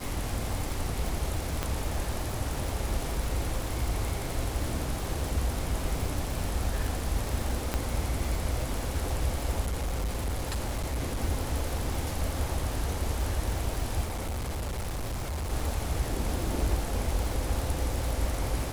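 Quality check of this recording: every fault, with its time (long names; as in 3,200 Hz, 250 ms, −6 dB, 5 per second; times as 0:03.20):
surface crackle 390 per second −33 dBFS
0:01.63: click −14 dBFS
0:07.74: click −13 dBFS
0:09.62–0:11.23: clipping −26.5 dBFS
0:14.04–0:15.53: clipping −29.5 dBFS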